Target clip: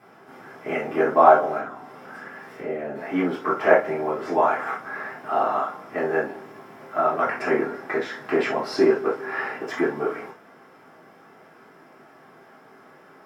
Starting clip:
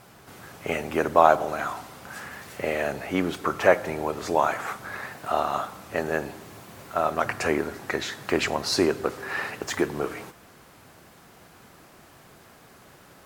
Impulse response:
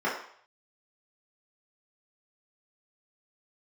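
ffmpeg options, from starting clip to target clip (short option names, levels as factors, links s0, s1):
-filter_complex "[0:a]asettb=1/sr,asplit=3[s0][s1][s2];[s0]atrim=end=1.584[s3];[s1]atrim=start=1.58:end=2.96,asetpts=PTS-STARTPTS,afade=t=in:d=0.004:c=qsin,afade=t=out:st=1.376:d=0.004:c=qsin,acrossover=split=460[s4][s5];[s5]acompressor=threshold=0.0112:ratio=5[s6];[s4][s6]amix=inputs=2:normalize=0[s7];[s2]atrim=start=2.956[s8];[s3][s7]acrossfade=d=0.004:c1=hsin:c2=qsin[s9];[s9][s8]acrossfade=d=0.004:c1=qsin:c2=hsin[s10];[1:a]atrim=start_sample=2205,atrim=end_sample=3528[s11];[s10][s11]afir=irnorm=-1:irlink=0,volume=0.316"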